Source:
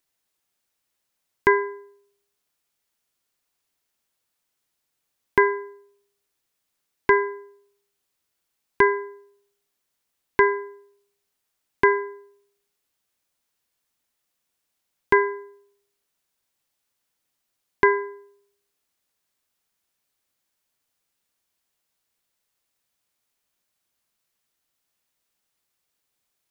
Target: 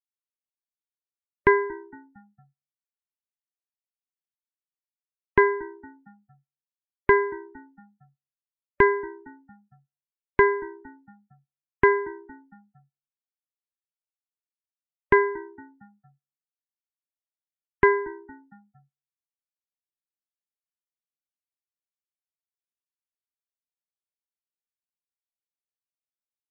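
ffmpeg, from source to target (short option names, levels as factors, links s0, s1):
-filter_complex "[0:a]lowshelf=f=200:g=10,asplit=5[s0][s1][s2][s3][s4];[s1]adelay=229,afreqshift=-66,volume=0.0708[s5];[s2]adelay=458,afreqshift=-132,volume=0.0403[s6];[s3]adelay=687,afreqshift=-198,volume=0.0229[s7];[s4]adelay=916,afreqshift=-264,volume=0.0132[s8];[s0][s5][s6][s7][s8]amix=inputs=5:normalize=0,afftdn=nr=34:nf=-40,aeval=exprs='0.708*(cos(1*acos(clip(val(0)/0.708,-1,1)))-cos(1*PI/2))+0.00891*(cos(3*acos(clip(val(0)/0.708,-1,1)))-cos(3*PI/2))':c=same,volume=0.841"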